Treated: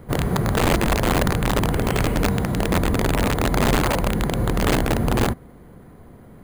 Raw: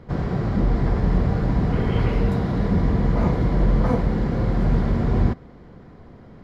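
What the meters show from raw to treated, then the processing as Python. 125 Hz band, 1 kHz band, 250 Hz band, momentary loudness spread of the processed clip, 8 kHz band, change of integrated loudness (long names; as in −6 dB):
−2.0 dB, +6.5 dB, 0.0 dB, 3 LU, can't be measured, +0.5 dB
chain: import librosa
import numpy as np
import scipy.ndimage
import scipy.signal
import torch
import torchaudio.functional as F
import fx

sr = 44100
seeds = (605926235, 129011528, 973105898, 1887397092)

y = fx.rider(x, sr, range_db=4, speed_s=2.0)
y = (np.mod(10.0 ** (13.0 / 20.0) * y + 1.0, 2.0) - 1.0) / 10.0 ** (13.0 / 20.0)
y = np.repeat(scipy.signal.resample_poly(y, 1, 4), 4)[:len(y)]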